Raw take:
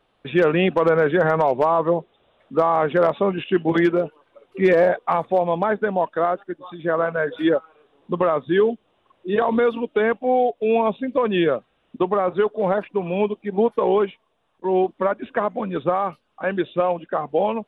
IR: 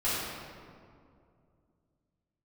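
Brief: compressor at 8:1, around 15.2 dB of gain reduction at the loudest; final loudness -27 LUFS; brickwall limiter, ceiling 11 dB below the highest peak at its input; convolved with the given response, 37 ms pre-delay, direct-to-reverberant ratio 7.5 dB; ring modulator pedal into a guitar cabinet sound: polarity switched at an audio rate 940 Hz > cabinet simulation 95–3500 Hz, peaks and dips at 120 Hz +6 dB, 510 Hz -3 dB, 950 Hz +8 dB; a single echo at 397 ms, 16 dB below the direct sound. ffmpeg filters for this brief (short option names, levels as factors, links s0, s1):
-filter_complex "[0:a]acompressor=threshold=0.0355:ratio=8,alimiter=level_in=1.41:limit=0.0631:level=0:latency=1,volume=0.708,aecho=1:1:397:0.158,asplit=2[s0][s1];[1:a]atrim=start_sample=2205,adelay=37[s2];[s1][s2]afir=irnorm=-1:irlink=0,volume=0.126[s3];[s0][s3]amix=inputs=2:normalize=0,aeval=exprs='val(0)*sgn(sin(2*PI*940*n/s))':c=same,highpass=95,equalizer=f=120:t=q:w=4:g=6,equalizer=f=510:t=q:w=4:g=-3,equalizer=f=950:t=q:w=4:g=8,lowpass=f=3500:w=0.5412,lowpass=f=3500:w=1.3066,volume=2.51"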